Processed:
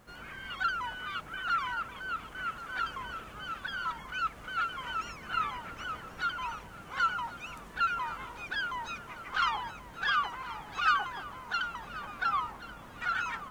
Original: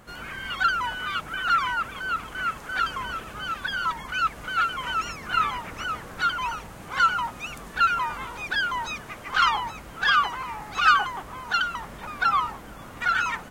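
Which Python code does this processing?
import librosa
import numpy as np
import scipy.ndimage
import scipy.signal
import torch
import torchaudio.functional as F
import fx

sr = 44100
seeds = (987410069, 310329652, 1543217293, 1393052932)

p1 = fx.high_shelf(x, sr, hz=5700.0, db=-5.0)
p2 = fx.quant_dither(p1, sr, seeds[0], bits=10, dither='none')
p3 = p2 + fx.echo_feedback(p2, sr, ms=1082, feedback_pct=60, wet_db=-16.0, dry=0)
y = p3 * librosa.db_to_amplitude(-8.0)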